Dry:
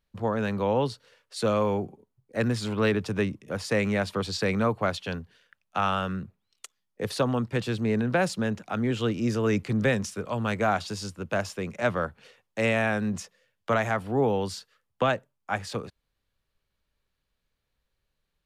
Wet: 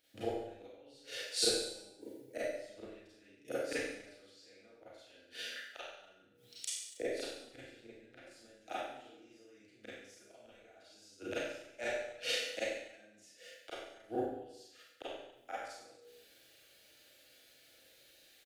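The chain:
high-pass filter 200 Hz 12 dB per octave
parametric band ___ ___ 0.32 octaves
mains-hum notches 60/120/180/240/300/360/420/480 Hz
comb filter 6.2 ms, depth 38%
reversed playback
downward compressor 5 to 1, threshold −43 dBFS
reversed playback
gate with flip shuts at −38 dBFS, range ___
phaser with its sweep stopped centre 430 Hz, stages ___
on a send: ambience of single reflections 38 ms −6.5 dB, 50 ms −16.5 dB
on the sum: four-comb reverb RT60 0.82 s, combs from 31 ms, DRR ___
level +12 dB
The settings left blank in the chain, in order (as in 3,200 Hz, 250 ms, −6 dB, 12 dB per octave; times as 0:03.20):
420 Hz, −8 dB, −36 dB, 4, −10 dB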